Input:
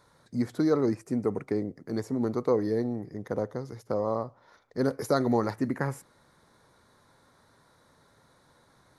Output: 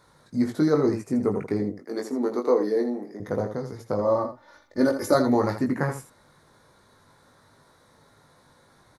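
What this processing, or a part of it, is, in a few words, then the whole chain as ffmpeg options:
slapback doubling: -filter_complex "[0:a]asettb=1/sr,asplit=3[a][b][c];[a]atrim=end=1.764[d];[b]atrim=start=1.76:end=3.2,asetpts=PTS-STARTPTS,afade=t=in:d=0.004:c=qsin,afade=t=out:st=1.436:d=0.004:c=qsin,highpass=f=250:w=0.5412,highpass=f=250:w=1.3066[e];[c]atrim=start=3.196[f];[d][e]acrossfade=d=0.004:c1=hsin:c2=qsin[g];[g][f]acrossfade=d=0.004:c1=qsin:c2=hsin,asettb=1/sr,asplit=3[h][i][j];[h]atrim=end=4.014[k];[i]atrim=start=4.01:end=5.15,asetpts=PTS-STARTPTS,afade=t=in:d=0.004:c=qsin,afade=t=out:st=1.136:d=0.004:c=qsin,aecho=1:1:3.4:0.71,atrim=end_sample=50274[l];[j]atrim=start=5.146[m];[k][l]acrossfade=d=0.004:c1=hsin:c2=qsin[n];[n][m]acrossfade=d=0.004:c1=qsin:c2=hsin,asplit=3[o][p][q];[p]adelay=20,volume=-4.5dB[r];[q]adelay=82,volume=-9dB[s];[o][r][s]amix=inputs=3:normalize=0,volume=2.5dB"

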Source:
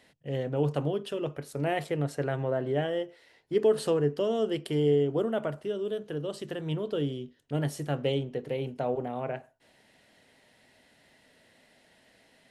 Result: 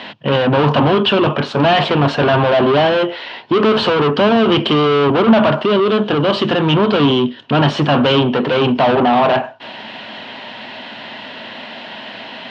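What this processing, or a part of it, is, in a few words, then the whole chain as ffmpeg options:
overdrive pedal into a guitar cabinet: -filter_complex "[0:a]asplit=2[a][b];[b]highpass=f=720:p=1,volume=32dB,asoftclip=type=tanh:threshold=-13.5dB[c];[a][c]amix=inputs=2:normalize=0,lowpass=f=5.7k:p=1,volume=-6dB,highpass=94,equalizer=f=110:t=q:w=4:g=8,equalizer=f=220:t=q:w=4:g=9,equalizer=f=470:t=q:w=4:g=-6,equalizer=f=990:t=q:w=4:g=6,equalizer=f=2k:t=q:w=4:g=-7,equalizer=f=3k:t=q:w=4:g=4,lowpass=f=3.8k:w=0.5412,lowpass=f=3.8k:w=1.3066,volume=8.5dB"

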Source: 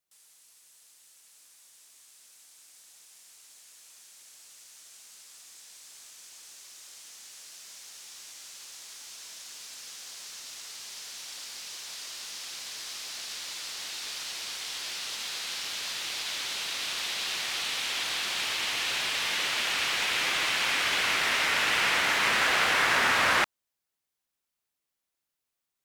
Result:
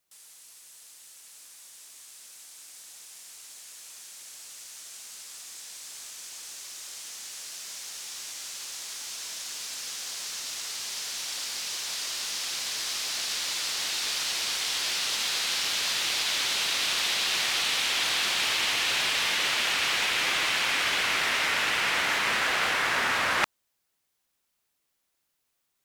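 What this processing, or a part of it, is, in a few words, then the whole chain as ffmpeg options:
compression on the reversed sound: -af "areverse,acompressor=threshold=-30dB:ratio=12,areverse,volume=7.5dB"

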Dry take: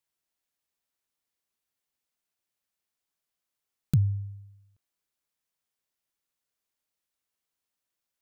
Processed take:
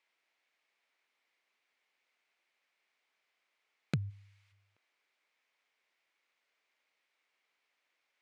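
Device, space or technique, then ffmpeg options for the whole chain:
intercom: -filter_complex "[0:a]highpass=410,lowpass=3.6k,equalizer=f=2.2k:t=o:w=0.46:g=9,asoftclip=type=tanh:threshold=-29.5dB,asplit=3[a][b][c];[a]afade=t=out:st=4.09:d=0.02[d];[b]tiltshelf=f=680:g=-9,afade=t=in:st=4.09:d=0.02,afade=t=out:st=4.51:d=0.02[e];[c]afade=t=in:st=4.51:d=0.02[f];[d][e][f]amix=inputs=3:normalize=0,volume=9.5dB"

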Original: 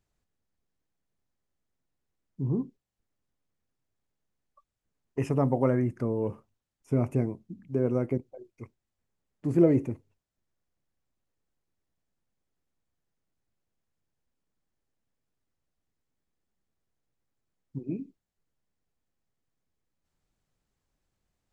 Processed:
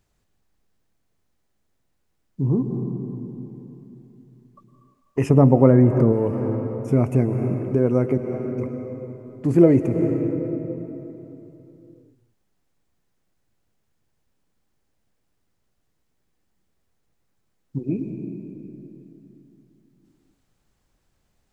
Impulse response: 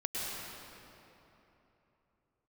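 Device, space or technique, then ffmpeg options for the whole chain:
ducked reverb: -filter_complex "[0:a]asplit=3[a][b][c];[1:a]atrim=start_sample=2205[d];[b][d]afir=irnorm=-1:irlink=0[e];[c]apad=whole_len=949221[f];[e][f]sidechaincompress=threshold=-31dB:ratio=8:attack=6:release=213,volume=-6dB[g];[a][g]amix=inputs=2:normalize=0,asettb=1/sr,asplit=3[h][i][j];[h]atrim=end=5.304[k];[i]atrim=start=5.3:end=6.13,asetpts=PTS-STARTPTS,afade=t=in:d=0.004:c=qsin,afade=t=out:st=0.826:d=0.004:c=qsin,tiltshelf=f=870:g=5.5[l];[j]atrim=start=6.126[m];[k][l]acrossfade=d=0.004:c1=hsin:c2=qsin[n];[n][m]acrossfade=d=0.004:c1=qsin:c2=hsin,volume=6.5dB"

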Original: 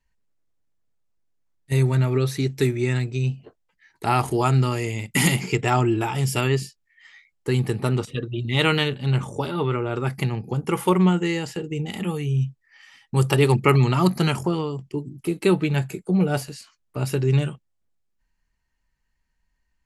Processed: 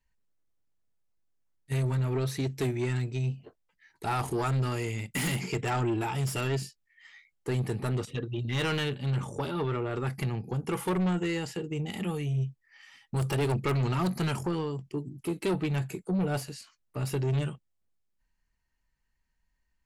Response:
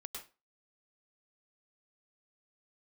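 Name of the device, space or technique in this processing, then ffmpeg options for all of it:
saturation between pre-emphasis and de-emphasis: -af "highshelf=f=5.1k:g=11,asoftclip=type=tanh:threshold=-19.5dB,highshelf=f=5.1k:g=-11,volume=-4dB"

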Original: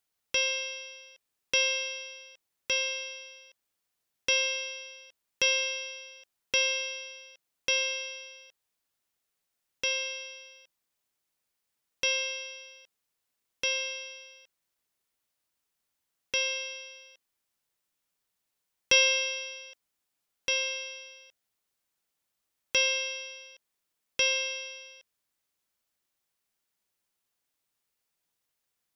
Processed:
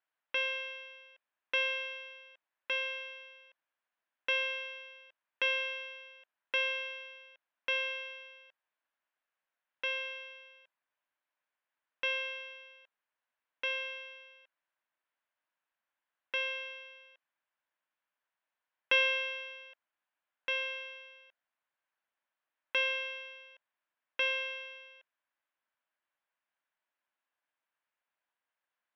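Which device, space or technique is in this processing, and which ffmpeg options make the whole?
phone earpiece: -af "highpass=350,equalizer=f=410:t=q:w=4:g=-9,equalizer=f=620:t=q:w=4:g=3,equalizer=f=990:t=q:w=4:g=5,equalizer=f=1.6k:t=q:w=4:g=7,lowpass=f=3k:w=0.5412,lowpass=f=3k:w=1.3066,volume=-3dB"

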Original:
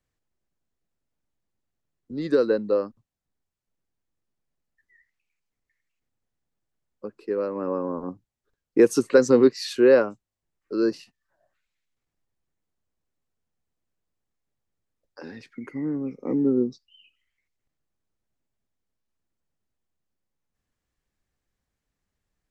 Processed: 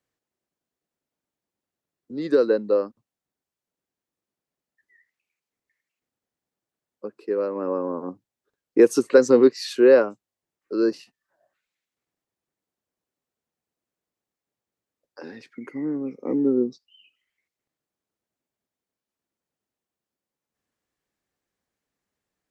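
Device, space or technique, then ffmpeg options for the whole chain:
filter by subtraction: -filter_complex "[0:a]asplit=2[a][b];[b]lowpass=370,volume=-1[c];[a][c]amix=inputs=2:normalize=0"

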